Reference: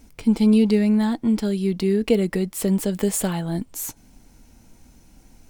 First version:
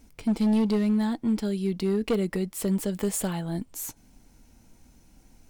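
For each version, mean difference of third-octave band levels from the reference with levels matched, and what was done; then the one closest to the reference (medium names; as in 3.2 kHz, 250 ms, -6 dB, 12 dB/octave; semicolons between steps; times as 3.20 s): 1.5 dB: hard clipper -14 dBFS, distortion -16 dB; trim -5 dB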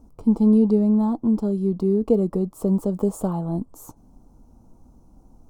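6.0 dB: FFT filter 1.2 kHz 0 dB, 1.8 kHz -29 dB, 6.4 kHz -15 dB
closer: first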